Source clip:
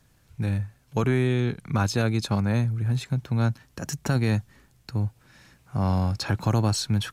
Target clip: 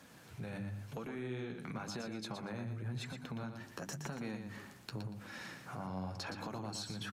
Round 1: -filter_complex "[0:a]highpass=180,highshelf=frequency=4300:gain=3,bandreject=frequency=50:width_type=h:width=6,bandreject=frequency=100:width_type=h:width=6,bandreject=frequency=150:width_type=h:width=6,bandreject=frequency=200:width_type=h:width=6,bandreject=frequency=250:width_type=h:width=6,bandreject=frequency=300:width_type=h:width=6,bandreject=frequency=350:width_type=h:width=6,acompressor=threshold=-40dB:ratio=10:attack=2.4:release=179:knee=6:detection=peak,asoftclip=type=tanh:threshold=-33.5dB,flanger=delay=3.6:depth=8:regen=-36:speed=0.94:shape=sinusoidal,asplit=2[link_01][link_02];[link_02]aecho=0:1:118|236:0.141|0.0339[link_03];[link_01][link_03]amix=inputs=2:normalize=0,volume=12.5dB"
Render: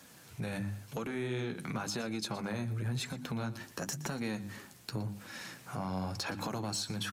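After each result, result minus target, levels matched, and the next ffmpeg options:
downward compressor: peak gain reduction −6.5 dB; echo-to-direct −9.5 dB; 8,000 Hz band +3.0 dB
-filter_complex "[0:a]highpass=180,highshelf=frequency=4300:gain=3,bandreject=frequency=50:width_type=h:width=6,bandreject=frequency=100:width_type=h:width=6,bandreject=frequency=150:width_type=h:width=6,bandreject=frequency=200:width_type=h:width=6,bandreject=frequency=250:width_type=h:width=6,bandreject=frequency=300:width_type=h:width=6,bandreject=frequency=350:width_type=h:width=6,acompressor=threshold=-47.5dB:ratio=10:attack=2.4:release=179:knee=6:detection=peak,asoftclip=type=tanh:threshold=-33.5dB,flanger=delay=3.6:depth=8:regen=-36:speed=0.94:shape=sinusoidal,asplit=2[link_01][link_02];[link_02]aecho=0:1:118|236:0.141|0.0339[link_03];[link_01][link_03]amix=inputs=2:normalize=0,volume=12.5dB"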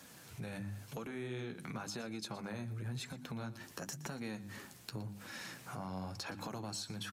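echo-to-direct −9.5 dB; 8,000 Hz band +3.5 dB
-filter_complex "[0:a]highpass=180,highshelf=frequency=4300:gain=3,bandreject=frequency=50:width_type=h:width=6,bandreject=frequency=100:width_type=h:width=6,bandreject=frequency=150:width_type=h:width=6,bandreject=frequency=200:width_type=h:width=6,bandreject=frequency=250:width_type=h:width=6,bandreject=frequency=300:width_type=h:width=6,bandreject=frequency=350:width_type=h:width=6,acompressor=threshold=-47.5dB:ratio=10:attack=2.4:release=179:knee=6:detection=peak,asoftclip=type=tanh:threshold=-33.5dB,flanger=delay=3.6:depth=8:regen=-36:speed=0.94:shape=sinusoidal,asplit=2[link_01][link_02];[link_02]aecho=0:1:118|236|354:0.422|0.101|0.0243[link_03];[link_01][link_03]amix=inputs=2:normalize=0,volume=12.5dB"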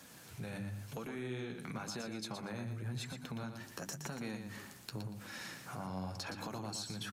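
8,000 Hz band +3.5 dB
-filter_complex "[0:a]highpass=180,highshelf=frequency=4300:gain=-6.5,bandreject=frequency=50:width_type=h:width=6,bandreject=frequency=100:width_type=h:width=6,bandreject=frequency=150:width_type=h:width=6,bandreject=frequency=200:width_type=h:width=6,bandreject=frequency=250:width_type=h:width=6,bandreject=frequency=300:width_type=h:width=6,bandreject=frequency=350:width_type=h:width=6,acompressor=threshold=-47.5dB:ratio=10:attack=2.4:release=179:knee=6:detection=peak,asoftclip=type=tanh:threshold=-33.5dB,flanger=delay=3.6:depth=8:regen=-36:speed=0.94:shape=sinusoidal,asplit=2[link_01][link_02];[link_02]aecho=0:1:118|236|354:0.422|0.101|0.0243[link_03];[link_01][link_03]amix=inputs=2:normalize=0,volume=12.5dB"

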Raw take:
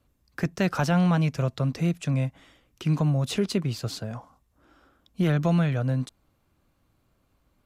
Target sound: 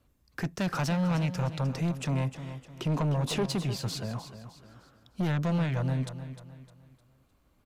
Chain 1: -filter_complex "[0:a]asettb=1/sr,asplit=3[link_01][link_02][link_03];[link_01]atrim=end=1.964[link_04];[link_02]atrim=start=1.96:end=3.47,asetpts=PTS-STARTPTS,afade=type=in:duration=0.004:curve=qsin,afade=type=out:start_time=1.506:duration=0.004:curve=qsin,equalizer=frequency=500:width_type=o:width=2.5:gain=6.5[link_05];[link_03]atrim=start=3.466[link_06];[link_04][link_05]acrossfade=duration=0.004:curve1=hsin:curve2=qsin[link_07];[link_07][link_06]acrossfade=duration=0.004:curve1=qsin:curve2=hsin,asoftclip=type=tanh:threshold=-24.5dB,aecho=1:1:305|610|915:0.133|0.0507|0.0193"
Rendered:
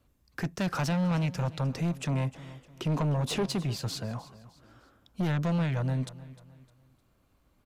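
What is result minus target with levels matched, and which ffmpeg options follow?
echo-to-direct −6 dB
-filter_complex "[0:a]asettb=1/sr,asplit=3[link_01][link_02][link_03];[link_01]atrim=end=1.964[link_04];[link_02]atrim=start=1.96:end=3.47,asetpts=PTS-STARTPTS,afade=type=in:duration=0.004:curve=qsin,afade=type=out:start_time=1.506:duration=0.004:curve=qsin,equalizer=frequency=500:width_type=o:width=2.5:gain=6.5[link_05];[link_03]atrim=start=3.466[link_06];[link_04][link_05]acrossfade=duration=0.004:curve1=hsin:curve2=qsin[link_07];[link_07][link_06]acrossfade=duration=0.004:curve1=qsin:curve2=hsin,asoftclip=type=tanh:threshold=-24.5dB,aecho=1:1:305|610|915|1220:0.266|0.101|0.0384|0.0146"

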